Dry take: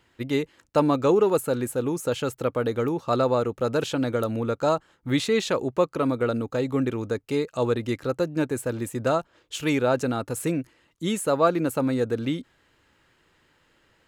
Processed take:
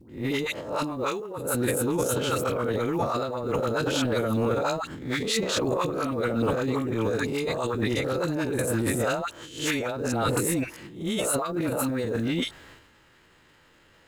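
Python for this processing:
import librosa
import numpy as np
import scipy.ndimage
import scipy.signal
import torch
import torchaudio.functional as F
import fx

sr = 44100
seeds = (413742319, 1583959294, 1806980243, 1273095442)

y = fx.spec_swells(x, sr, rise_s=0.41)
y = fx.over_compress(y, sr, threshold_db=-26.0, ratio=-0.5)
y = fx.dispersion(y, sr, late='highs', ms=97.0, hz=870.0)
y = fx.quant_companded(y, sr, bits=8)
y = fx.transient(y, sr, attack_db=-10, sustain_db=10)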